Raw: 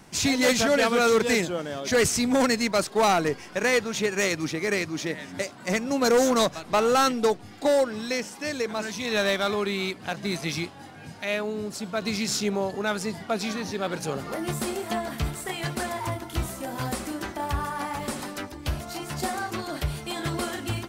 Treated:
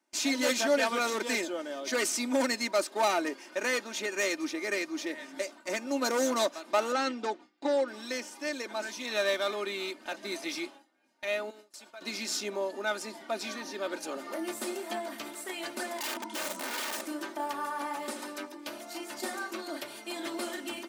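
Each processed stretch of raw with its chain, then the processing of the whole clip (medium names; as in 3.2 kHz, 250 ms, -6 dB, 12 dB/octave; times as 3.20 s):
6.92–7.88 s: median filter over 3 samples + distance through air 85 m + band-stop 610 Hz, Q 7
11.50–12.01 s: high-pass 780 Hz 6 dB/octave + compression 3:1, threshold -40 dBFS
15.98–17.01 s: low-pass 8.9 kHz 24 dB/octave + small resonant body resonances 210/970 Hz, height 17 dB, ringing for 95 ms + integer overflow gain 24.5 dB
whole clip: high-pass 270 Hz 24 dB/octave; gate with hold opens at -33 dBFS; comb 3.3 ms, depth 63%; trim -6.5 dB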